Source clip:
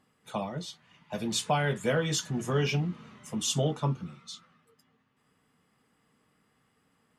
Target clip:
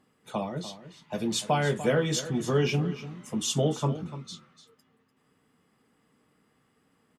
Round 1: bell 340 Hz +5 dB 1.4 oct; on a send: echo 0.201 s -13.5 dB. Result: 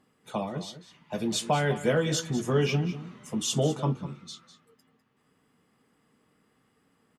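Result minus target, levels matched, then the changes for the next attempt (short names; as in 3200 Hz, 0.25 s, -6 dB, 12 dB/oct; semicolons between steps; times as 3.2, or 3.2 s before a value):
echo 94 ms early
change: echo 0.295 s -13.5 dB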